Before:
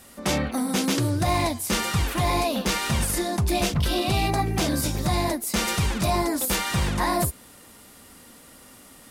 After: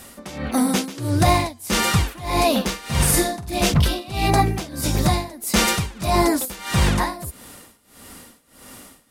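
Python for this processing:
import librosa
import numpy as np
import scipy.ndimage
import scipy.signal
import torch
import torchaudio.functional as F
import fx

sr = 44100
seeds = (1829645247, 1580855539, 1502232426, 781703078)

y = fx.room_flutter(x, sr, wall_m=8.1, rt60_s=0.46, at=(2.67, 3.58))
y = y * (1.0 - 0.91 / 2.0 + 0.91 / 2.0 * np.cos(2.0 * np.pi * 1.6 * (np.arange(len(y)) / sr)))
y = F.gain(torch.from_numpy(y), 7.5).numpy()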